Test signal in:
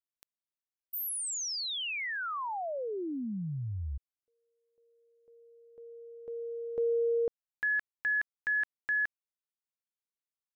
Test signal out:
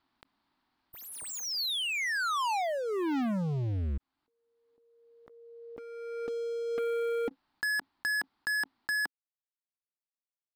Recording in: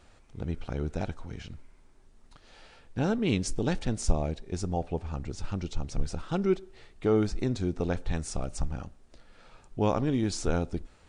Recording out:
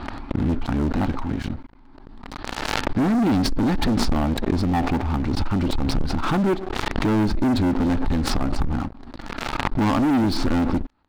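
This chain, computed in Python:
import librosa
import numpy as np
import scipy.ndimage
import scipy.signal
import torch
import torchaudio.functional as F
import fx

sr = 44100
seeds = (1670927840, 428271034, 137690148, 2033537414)

y = fx.curve_eq(x, sr, hz=(170.0, 270.0, 500.0, 860.0, 2600.0, 4500.0, 6400.0), db=(0, 11, -9, 7, -6, -4, -27))
y = fx.leveller(y, sr, passes=5)
y = fx.pre_swell(y, sr, db_per_s=25.0)
y = y * librosa.db_to_amplitude(-6.5)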